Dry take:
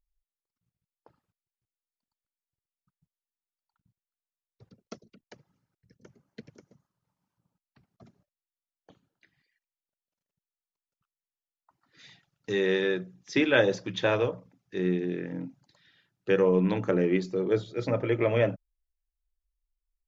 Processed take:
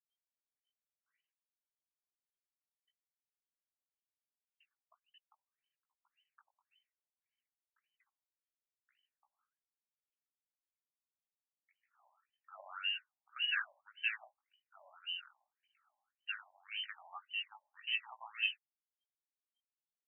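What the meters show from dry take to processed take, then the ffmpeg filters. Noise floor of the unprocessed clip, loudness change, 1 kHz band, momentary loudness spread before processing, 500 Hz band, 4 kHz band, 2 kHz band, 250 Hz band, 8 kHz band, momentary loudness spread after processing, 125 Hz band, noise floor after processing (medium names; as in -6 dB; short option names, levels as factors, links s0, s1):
under -85 dBFS, -12.0 dB, -14.0 dB, 16 LU, under -40 dB, 0.0 dB, -7.0 dB, under -40 dB, no reading, 15 LU, under -40 dB, under -85 dBFS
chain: -af "flanger=delay=16:depth=4.1:speed=0.99,lowpass=f=2700:t=q:w=0.5098,lowpass=f=2700:t=q:w=0.6013,lowpass=f=2700:t=q:w=0.9,lowpass=f=2700:t=q:w=2.563,afreqshift=-3200,afftfilt=real='re*between(b*sr/1024,750*pow(2300/750,0.5+0.5*sin(2*PI*1.8*pts/sr))/1.41,750*pow(2300/750,0.5+0.5*sin(2*PI*1.8*pts/sr))*1.41)':imag='im*between(b*sr/1024,750*pow(2300/750,0.5+0.5*sin(2*PI*1.8*pts/sr))/1.41,750*pow(2300/750,0.5+0.5*sin(2*PI*1.8*pts/sr))*1.41)':win_size=1024:overlap=0.75,volume=0.473"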